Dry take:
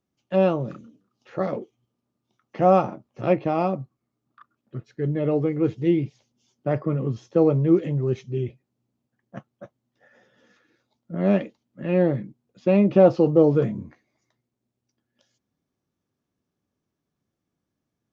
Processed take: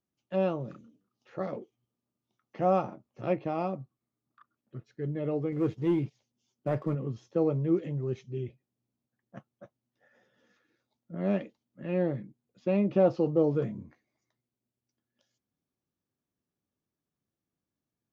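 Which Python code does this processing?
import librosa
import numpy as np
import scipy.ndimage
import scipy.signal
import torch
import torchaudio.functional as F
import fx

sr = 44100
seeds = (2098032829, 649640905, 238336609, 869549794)

y = fx.leveller(x, sr, passes=1, at=(5.52, 6.95))
y = y * librosa.db_to_amplitude(-8.5)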